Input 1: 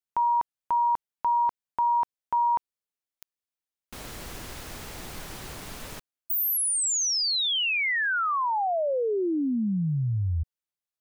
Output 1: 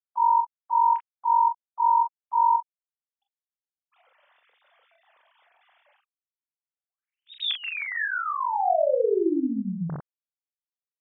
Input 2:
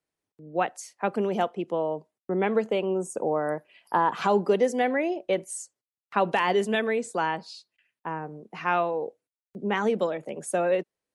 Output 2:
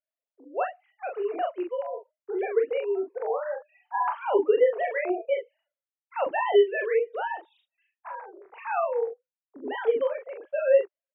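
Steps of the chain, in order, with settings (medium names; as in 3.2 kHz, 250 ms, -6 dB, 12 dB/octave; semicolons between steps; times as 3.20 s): formants replaced by sine waves; early reflections 27 ms -9.5 dB, 42 ms -5 dB; trim -2 dB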